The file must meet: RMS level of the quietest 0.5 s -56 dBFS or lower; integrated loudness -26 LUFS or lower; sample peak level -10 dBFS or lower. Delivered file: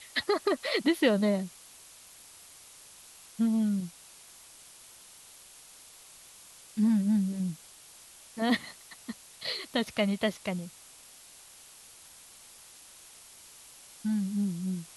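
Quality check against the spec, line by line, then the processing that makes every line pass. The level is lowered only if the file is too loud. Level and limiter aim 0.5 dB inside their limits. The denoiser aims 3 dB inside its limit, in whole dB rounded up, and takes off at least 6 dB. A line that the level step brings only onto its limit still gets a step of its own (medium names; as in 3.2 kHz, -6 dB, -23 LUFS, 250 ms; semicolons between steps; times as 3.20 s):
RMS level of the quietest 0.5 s -53 dBFS: fail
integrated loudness -30.0 LUFS: pass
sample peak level -13.5 dBFS: pass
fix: noise reduction 6 dB, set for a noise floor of -53 dBFS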